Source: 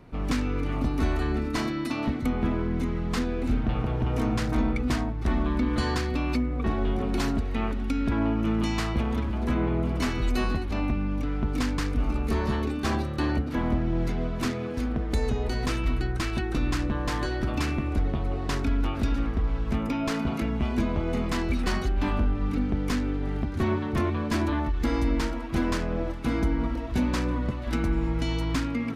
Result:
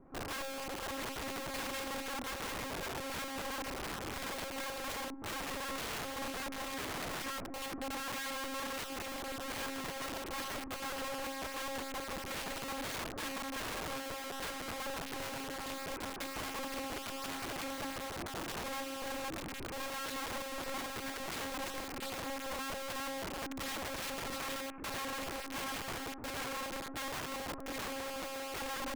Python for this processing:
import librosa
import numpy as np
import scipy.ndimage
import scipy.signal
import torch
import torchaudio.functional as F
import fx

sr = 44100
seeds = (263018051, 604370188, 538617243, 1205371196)

p1 = fx.rattle_buzz(x, sr, strikes_db=-23.0, level_db=-22.0)
p2 = scipy.signal.sosfilt(scipy.signal.butter(4, 1500.0, 'lowpass', fs=sr, output='sos'), p1)
p3 = fx.rider(p2, sr, range_db=10, speed_s=0.5)
p4 = p2 + (p3 * 10.0 ** (-2.0 / 20.0))
p5 = scipy.signal.sosfilt(scipy.signal.butter(12, 160.0, 'highpass', fs=sr, output='sos'), p4)
p6 = fx.harmonic_tremolo(p5, sr, hz=5.6, depth_pct=50, crossover_hz=520.0)
p7 = fx.echo_feedback(p6, sr, ms=72, feedback_pct=38, wet_db=-18.0)
p8 = fx.lpc_monotone(p7, sr, seeds[0], pitch_hz=270.0, order=16)
p9 = (np.mod(10.0 ** (26.5 / 20.0) * p8 + 1.0, 2.0) - 1.0) / 10.0 ** (26.5 / 20.0)
y = p9 * 10.0 ** (-8.5 / 20.0)